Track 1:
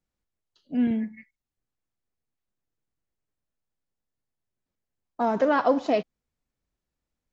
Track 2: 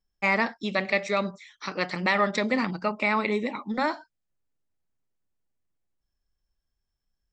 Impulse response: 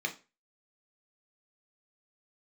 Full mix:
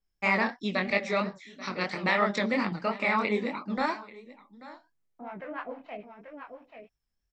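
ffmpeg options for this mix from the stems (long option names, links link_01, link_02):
-filter_complex "[0:a]acrossover=split=590[link_01][link_02];[link_01]aeval=exprs='val(0)*(1-1/2+1/2*cos(2*PI*6.7*n/s))':channel_layout=same[link_03];[link_02]aeval=exprs='val(0)*(1-1/2-1/2*cos(2*PI*6.7*n/s))':channel_layout=same[link_04];[link_03][link_04]amix=inputs=2:normalize=0,lowpass=frequency=2400:width_type=q:width=4.5,volume=-9dB,asplit=3[link_05][link_06][link_07];[link_06]volume=-16.5dB[link_08];[link_07]volume=-8dB[link_09];[1:a]adynamicequalizer=threshold=0.00562:dfrequency=5800:dqfactor=0.7:tfrequency=5800:tqfactor=0.7:attack=5:release=100:ratio=0.375:range=2.5:mode=cutabove:tftype=highshelf,volume=1dB,asplit=2[link_10][link_11];[link_11]volume=-18.5dB[link_12];[2:a]atrim=start_sample=2205[link_13];[link_08][link_13]afir=irnorm=-1:irlink=0[link_14];[link_09][link_12]amix=inputs=2:normalize=0,aecho=0:1:836:1[link_15];[link_05][link_10][link_14][link_15]amix=inputs=4:normalize=0,flanger=delay=19.5:depth=7.3:speed=3"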